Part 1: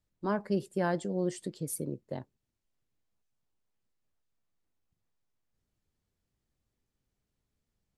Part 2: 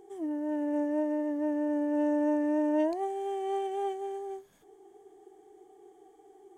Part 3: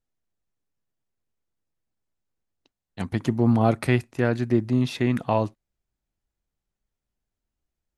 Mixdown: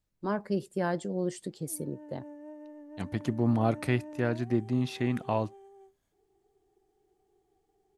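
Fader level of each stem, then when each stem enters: 0.0, -16.5, -6.5 dB; 0.00, 1.50, 0.00 s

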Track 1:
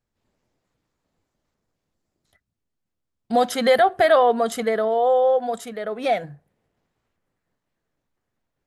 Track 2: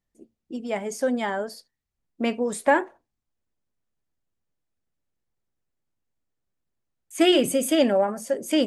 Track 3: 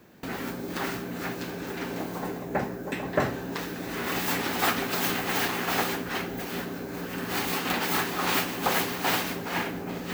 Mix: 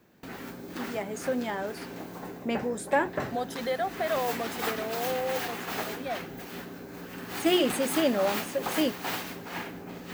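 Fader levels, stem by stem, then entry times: -13.5, -5.5, -7.0 dB; 0.00, 0.25, 0.00 s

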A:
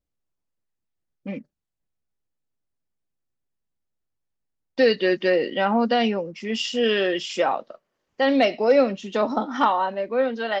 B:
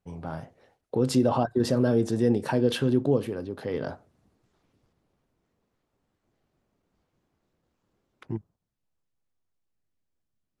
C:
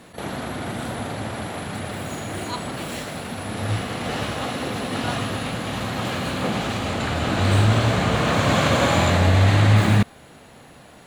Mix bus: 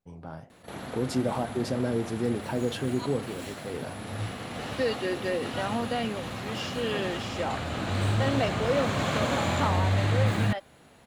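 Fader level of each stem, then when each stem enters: -10.0, -5.5, -9.0 dB; 0.00, 0.00, 0.50 s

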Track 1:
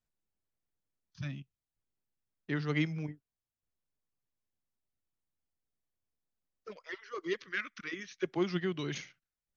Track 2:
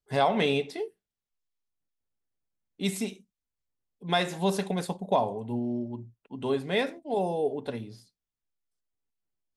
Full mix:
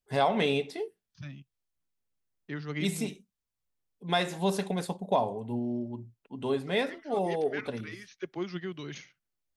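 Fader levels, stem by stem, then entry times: -3.5, -1.5 dB; 0.00, 0.00 s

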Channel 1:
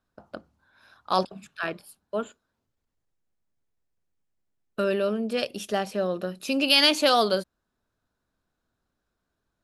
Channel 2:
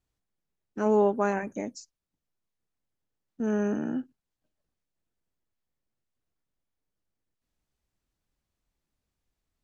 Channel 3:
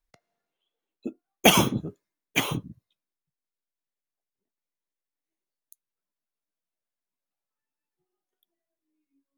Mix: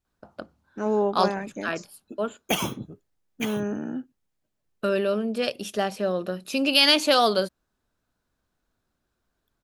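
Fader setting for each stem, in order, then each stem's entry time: +1.0, -1.0, -8.0 dB; 0.05, 0.00, 1.05 s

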